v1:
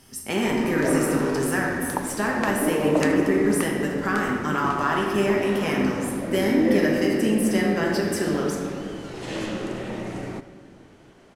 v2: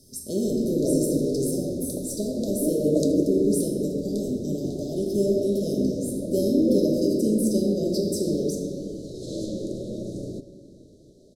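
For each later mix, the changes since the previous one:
master: add Chebyshev band-stop 610–3800 Hz, order 5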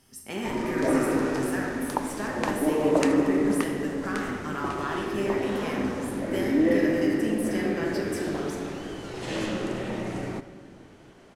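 speech -8.5 dB; master: remove Chebyshev band-stop 610–3800 Hz, order 5

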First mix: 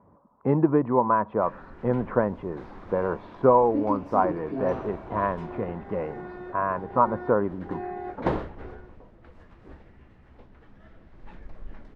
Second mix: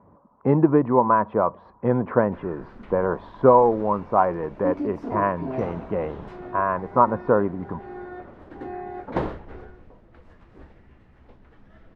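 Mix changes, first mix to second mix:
speech +3.5 dB; background: entry +0.90 s

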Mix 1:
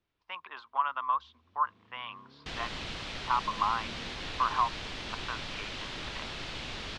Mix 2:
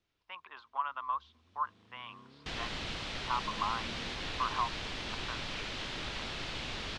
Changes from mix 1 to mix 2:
speech -5.5 dB; first sound: remove low-pass 2.9 kHz 6 dB/octave

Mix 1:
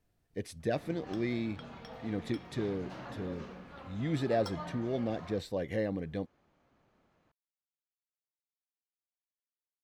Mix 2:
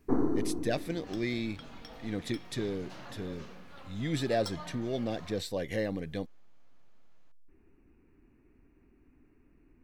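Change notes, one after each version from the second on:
first sound: unmuted; second sound -4.0 dB; reverb: on, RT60 0.65 s; master: add treble shelf 2.8 kHz +11 dB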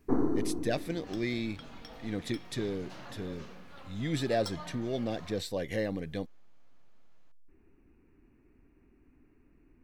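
no change

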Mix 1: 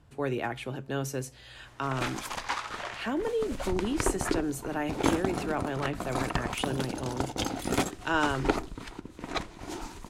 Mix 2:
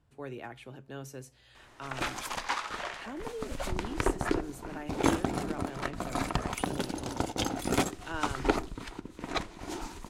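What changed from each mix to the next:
speech -10.5 dB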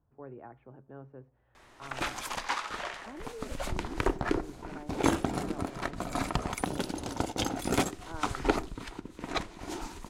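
speech: add four-pole ladder low-pass 1.5 kHz, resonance 20%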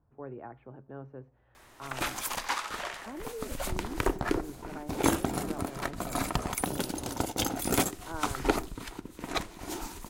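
speech +3.5 dB; master: remove distance through air 53 m

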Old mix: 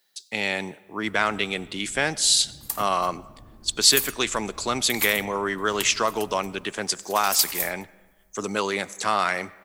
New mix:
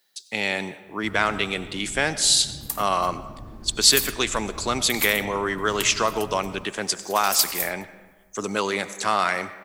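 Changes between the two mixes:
speech: send +8.0 dB; first sound +8.5 dB

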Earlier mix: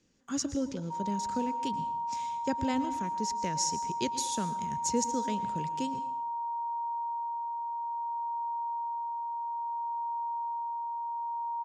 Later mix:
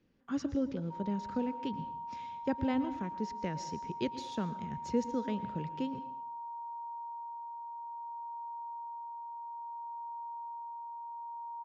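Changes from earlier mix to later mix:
background -7.0 dB; master: add distance through air 290 m

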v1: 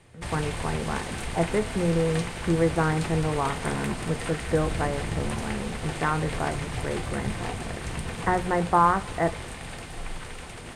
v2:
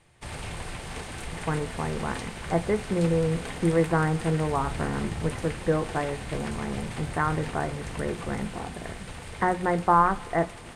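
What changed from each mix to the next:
speech: entry +1.15 s; background -3.5 dB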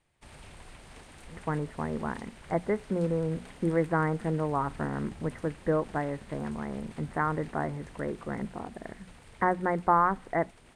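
background -10.5 dB; reverb: off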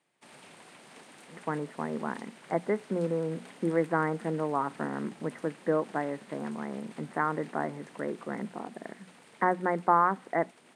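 master: add high-pass 180 Hz 24 dB/octave

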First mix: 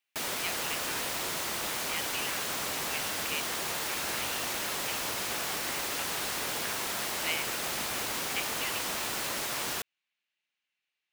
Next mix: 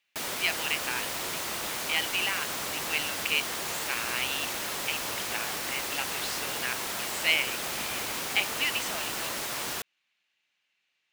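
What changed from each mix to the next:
speech +9.5 dB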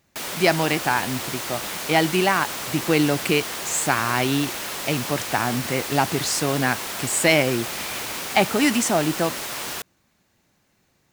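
speech: remove band-pass filter 2.8 kHz, Q 3; background +3.0 dB

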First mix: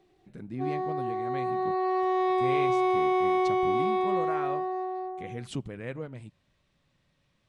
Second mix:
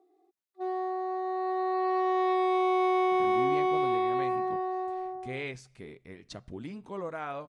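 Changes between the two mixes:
speech: entry +2.85 s; master: add peaking EQ 150 Hz -6 dB 1.5 oct

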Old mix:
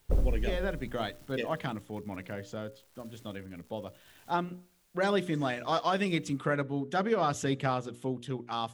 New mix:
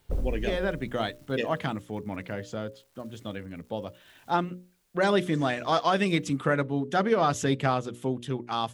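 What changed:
speech +5.0 dB; reverb: off

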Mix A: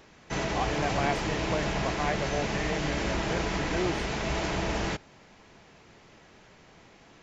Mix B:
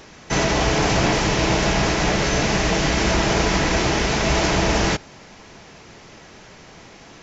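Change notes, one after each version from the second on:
background +10.5 dB; master: add peaking EQ 5.7 kHz +5 dB 0.74 oct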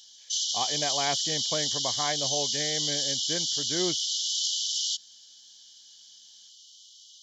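background: add brick-wall FIR high-pass 2.9 kHz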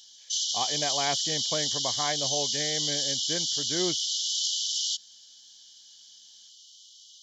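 no change

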